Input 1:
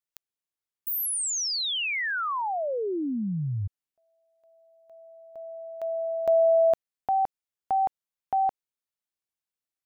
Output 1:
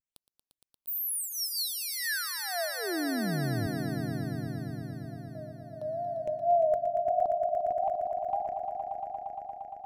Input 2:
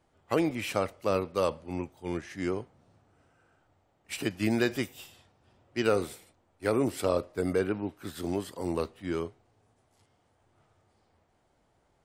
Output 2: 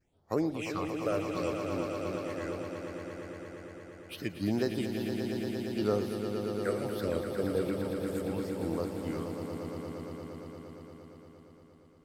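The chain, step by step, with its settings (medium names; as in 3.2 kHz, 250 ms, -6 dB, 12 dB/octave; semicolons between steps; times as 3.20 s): wow and flutter 110 cents; phase shifter stages 6, 0.71 Hz, lowest notch 240–2900 Hz; echo with a slow build-up 116 ms, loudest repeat 5, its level -8.5 dB; trim -4 dB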